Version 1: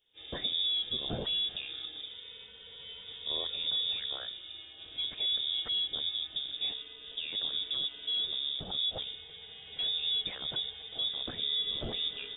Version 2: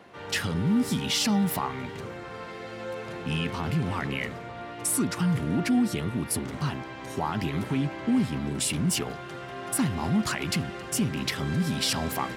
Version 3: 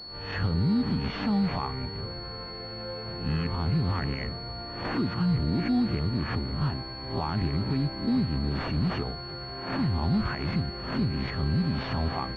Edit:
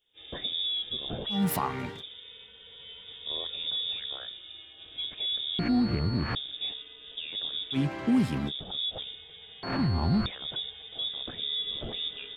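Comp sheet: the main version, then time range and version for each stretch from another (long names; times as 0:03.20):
1
0:01.37–0:01.96: punch in from 2, crossfade 0.16 s
0:05.59–0:06.35: punch in from 3
0:07.75–0:08.49: punch in from 2, crossfade 0.06 s
0:09.63–0:10.26: punch in from 3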